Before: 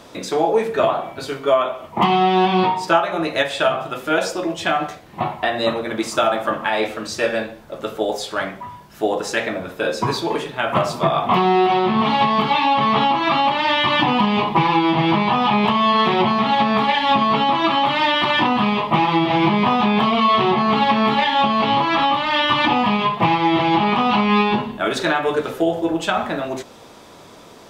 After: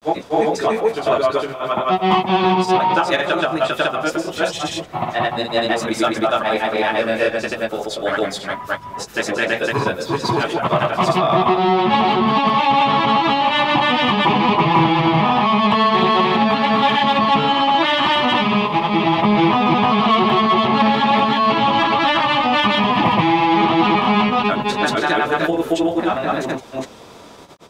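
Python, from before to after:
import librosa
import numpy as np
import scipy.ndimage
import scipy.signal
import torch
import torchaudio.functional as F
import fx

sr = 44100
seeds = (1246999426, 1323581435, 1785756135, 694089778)

p1 = fx.granulator(x, sr, seeds[0], grain_ms=118.0, per_s=24.0, spray_ms=341.0, spread_st=0)
p2 = 10.0 ** (-18.5 / 20.0) * np.tanh(p1 / 10.0 ** (-18.5 / 20.0))
p3 = p1 + F.gain(torch.from_numpy(p2), -9.0).numpy()
y = F.gain(torch.from_numpy(p3), 2.5).numpy()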